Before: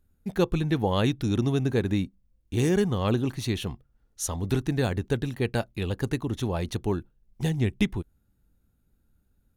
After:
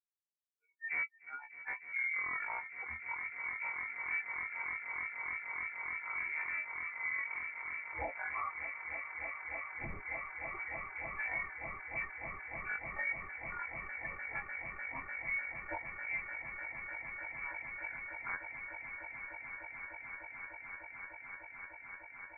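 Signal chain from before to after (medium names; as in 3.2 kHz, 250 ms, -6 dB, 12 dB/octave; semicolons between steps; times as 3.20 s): expander on every frequency bin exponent 3; in parallel at -2 dB: compression, threshold -39 dBFS, peak gain reduction 16.5 dB; on the sum: saturation -27.5 dBFS, distortion -10 dB; steep high-pass 470 Hz 48 dB/octave; echo with a slow build-up 128 ms, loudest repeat 8, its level -14 dB; peak limiter -32 dBFS, peak gain reduction 9.5 dB; speed mistake 78 rpm record played at 33 rpm; frequency inversion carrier 2.5 kHz; trim +3.5 dB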